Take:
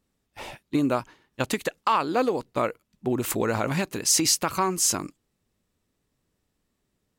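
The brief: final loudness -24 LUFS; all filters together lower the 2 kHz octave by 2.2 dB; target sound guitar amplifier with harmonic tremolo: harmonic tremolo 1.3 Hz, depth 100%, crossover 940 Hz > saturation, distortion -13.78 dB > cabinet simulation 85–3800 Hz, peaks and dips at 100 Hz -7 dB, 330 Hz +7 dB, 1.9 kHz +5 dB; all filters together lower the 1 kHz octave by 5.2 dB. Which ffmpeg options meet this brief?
-filter_complex "[0:a]equalizer=f=1000:t=o:g=-6,equalizer=f=2000:t=o:g=-3.5,acrossover=split=940[s0][s1];[s0]aeval=exprs='val(0)*(1-1/2+1/2*cos(2*PI*1.3*n/s))':c=same[s2];[s1]aeval=exprs='val(0)*(1-1/2-1/2*cos(2*PI*1.3*n/s))':c=same[s3];[s2][s3]amix=inputs=2:normalize=0,asoftclip=threshold=0.0891,highpass=85,equalizer=f=100:t=q:w=4:g=-7,equalizer=f=330:t=q:w=4:g=7,equalizer=f=1900:t=q:w=4:g=5,lowpass=f=3800:w=0.5412,lowpass=f=3800:w=1.3066,volume=2.51"

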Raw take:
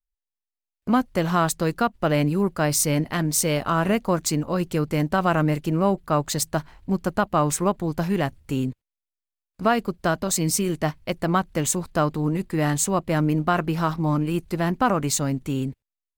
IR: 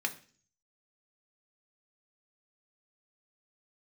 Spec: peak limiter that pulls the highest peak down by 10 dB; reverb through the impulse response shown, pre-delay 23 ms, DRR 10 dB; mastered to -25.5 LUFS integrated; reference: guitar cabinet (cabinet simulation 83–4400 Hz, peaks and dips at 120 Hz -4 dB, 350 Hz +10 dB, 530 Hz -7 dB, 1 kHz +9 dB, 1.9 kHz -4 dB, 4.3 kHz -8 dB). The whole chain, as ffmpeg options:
-filter_complex "[0:a]alimiter=limit=0.112:level=0:latency=1,asplit=2[s0][s1];[1:a]atrim=start_sample=2205,adelay=23[s2];[s1][s2]afir=irnorm=-1:irlink=0,volume=0.178[s3];[s0][s3]amix=inputs=2:normalize=0,highpass=83,equalizer=f=120:t=q:w=4:g=-4,equalizer=f=350:t=q:w=4:g=10,equalizer=f=530:t=q:w=4:g=-7,equalizer=f=1000:t=q:w=4:g=9,equalizer=f=1900:t=q:w=4:g=-4,equalizer=f=4300:t=q:w=4:g=-8,lowpass=f=4400:w=0.5412,lowpass=f=4400:w=1.3066,volume=1.19"

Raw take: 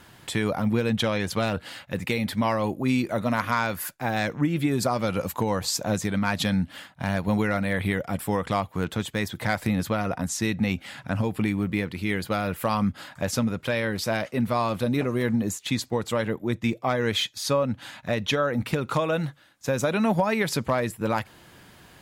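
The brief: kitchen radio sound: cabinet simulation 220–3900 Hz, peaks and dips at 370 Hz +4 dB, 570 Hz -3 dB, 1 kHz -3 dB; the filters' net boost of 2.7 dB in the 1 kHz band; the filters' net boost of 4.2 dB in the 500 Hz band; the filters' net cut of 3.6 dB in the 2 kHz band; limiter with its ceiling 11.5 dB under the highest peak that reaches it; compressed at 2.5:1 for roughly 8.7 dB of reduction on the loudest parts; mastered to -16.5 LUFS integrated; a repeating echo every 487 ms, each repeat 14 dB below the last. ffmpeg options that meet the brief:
-af "equalizer=f=500:t=o:g=5,equalizer=f=1000:t=o:g=5.5,equalizer=f=2000:t=o:g=-7,acompressor=threshold=0.0398:ratio=2.5,alimiter=level_in=1.06:limit=0.0631:level=0:latency=1,volume=0.944,highpass=220,equalizer=f=370:t=q:w=4:g=4,equalizer=f=570:t=q:w=4:g=-3,equalizer=f=1000:t=q:w=4:g=-3,lowpass=f=3900:w=0.5412,lowpass=f=3900:w=1.3066,aecho=1:1:487|974:0.2|0.0399,volume=10.6"

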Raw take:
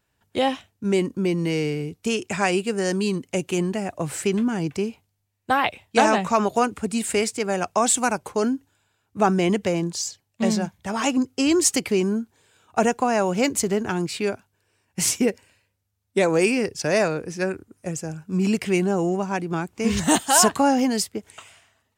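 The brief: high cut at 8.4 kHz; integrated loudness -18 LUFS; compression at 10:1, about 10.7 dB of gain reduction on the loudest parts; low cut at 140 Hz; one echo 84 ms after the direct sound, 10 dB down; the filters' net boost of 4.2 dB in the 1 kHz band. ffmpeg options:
-af "highpass=140,lowpass=8400,equalizer=f=1000:t=o:g=5.5,acompressor=threshold=0.0891:ratio=10,aecho=1:1:84:0.316,volume=2.82"

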